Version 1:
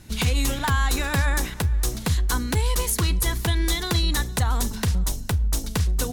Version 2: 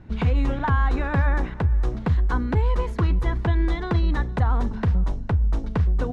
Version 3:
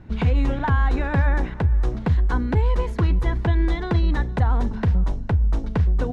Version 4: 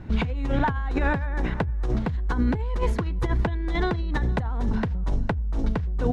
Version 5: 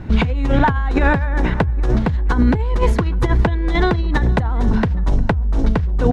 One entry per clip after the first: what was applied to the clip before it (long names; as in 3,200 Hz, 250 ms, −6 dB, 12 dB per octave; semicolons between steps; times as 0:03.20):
low-pass filter 1,400 Hz 12 dB per octave; level +2 dB
dynamic equaliser 1,200 Hz, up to −5 dB, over −44 dBFS, Q 3.9; level +1.5 dB
compressor whose output falls as the input rises −24 dBFS, ratio −1
slap from a distant wall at 140 metres, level −19 dB; level +8.5 dB